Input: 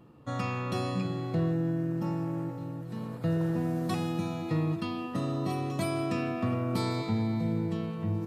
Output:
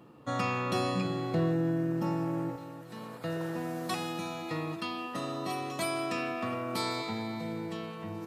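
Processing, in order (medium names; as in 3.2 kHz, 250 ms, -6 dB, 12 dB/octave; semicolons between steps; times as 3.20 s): high-pass 260 Hz 6 dB/octave, from 2.56 s 800 Hz; trim +4 dB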